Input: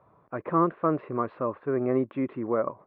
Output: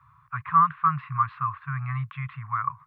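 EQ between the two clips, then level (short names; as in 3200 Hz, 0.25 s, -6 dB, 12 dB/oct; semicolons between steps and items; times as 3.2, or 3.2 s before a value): Chebyshev band-stop 140–1100 Hz, order 4; dynamic EQ 160 Hz, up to +4 dB, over -53 dBFS, Q 4; bell 670 Hz +4 dB 1.2 oct; +7.5 dB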